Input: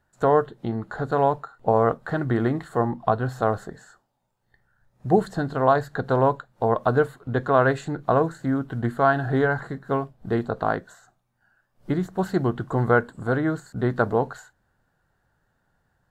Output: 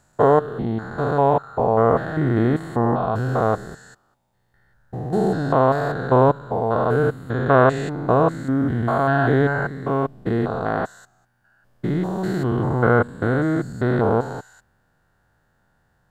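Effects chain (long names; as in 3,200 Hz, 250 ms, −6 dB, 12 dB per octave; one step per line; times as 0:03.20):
spectrum averaged block by block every 200 ms
level +6.5 dB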